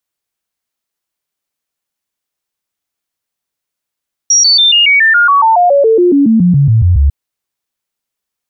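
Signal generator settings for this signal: stepped sine 5.68 kHz down, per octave 3, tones 20, 0.14 s, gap 0.00 s -4.5 dBFS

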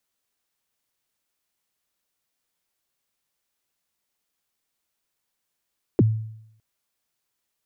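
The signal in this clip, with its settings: kick drum length 0.61 s, from 460 Hz, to 110 Hz, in 30 ms, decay 0.75 s, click off, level -11 dB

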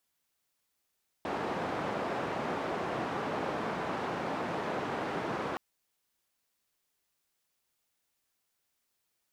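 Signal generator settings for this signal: noise band 150–950 Hz, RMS -34.5 dBFS 4.32 s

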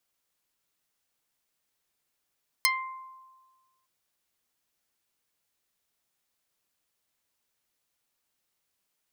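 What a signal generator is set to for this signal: plucked string C6, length 1.21 s, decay 1.46 s, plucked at 0.28, dark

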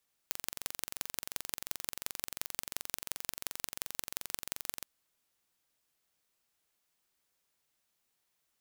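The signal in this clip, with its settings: pulse train 22.8 per s, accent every 4, -5.5 dBFS 4.55 s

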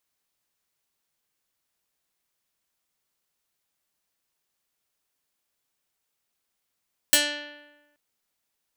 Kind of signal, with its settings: plucked string D4, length 0.83 s, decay 1.15 s, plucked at 0.24, medium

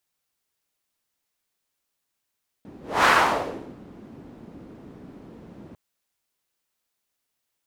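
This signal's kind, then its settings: whoosh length 3.10 s, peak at 0.41 s, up 0.27 s, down 0.77 s, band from 250 Hz, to 1.3 kHz, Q 1.6, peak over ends 27.5 dB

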